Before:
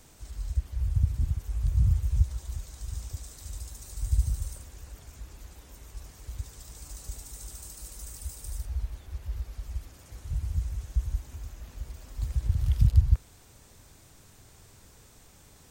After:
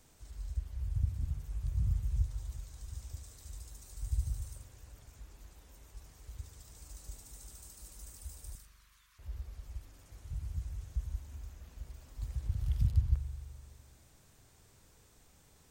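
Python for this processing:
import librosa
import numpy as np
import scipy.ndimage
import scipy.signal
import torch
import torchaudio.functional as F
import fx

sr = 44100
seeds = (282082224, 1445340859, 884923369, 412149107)

y = fx.steep_highpass(x, sr, hz=1000.0, slope=96, at=(8.55, 9.19))
y = fx.rev_spring(y, sr, rt60_s=1.7, pass_ms=(42,), chirp_ms=45, drr_db=9.0)
y = y * librosa.db_to_amplitude(-8.5)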